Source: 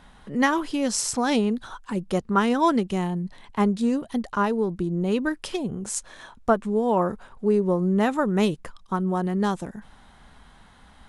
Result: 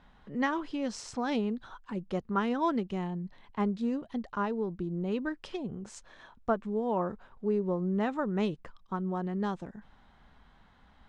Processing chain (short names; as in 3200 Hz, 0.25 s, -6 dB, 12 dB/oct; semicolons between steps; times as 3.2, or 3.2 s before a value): air absorption 130 m; gain -8 dB